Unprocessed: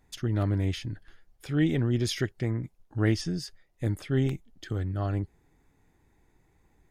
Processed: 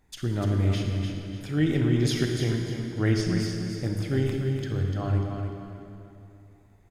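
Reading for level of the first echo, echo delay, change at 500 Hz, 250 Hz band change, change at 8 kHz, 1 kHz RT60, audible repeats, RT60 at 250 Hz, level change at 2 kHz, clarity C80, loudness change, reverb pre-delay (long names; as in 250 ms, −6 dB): −7.0 dB, 296 ms, +3.5 dB, +3.0 dB, +2.5 dB, 2.7 s, 2, 2.9 s, +2.5 dB, 1.5 dB, +2.5 dB, 29 ms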